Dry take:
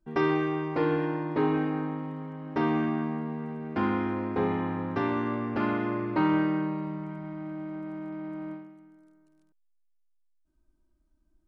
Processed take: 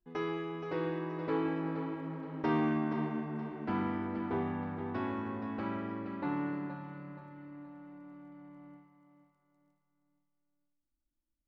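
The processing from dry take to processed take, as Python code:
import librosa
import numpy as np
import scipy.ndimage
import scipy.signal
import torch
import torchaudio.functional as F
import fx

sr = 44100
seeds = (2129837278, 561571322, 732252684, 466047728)

p1 = fx.doppler_pass(x, sr, speed_mps=24, closest_m=26.0, pass_at_s=2.48)
p2 = fx.rider(p1, sr, range_db=4, speed_s=2.0)
p3 = p2 + fx.echo_feedback(p2, sr, ms=473, feedback_pct=38, wet_db=-9.0, dry=0)
y = F.gain(torch.from_numpy(p3), -3.5).numpy()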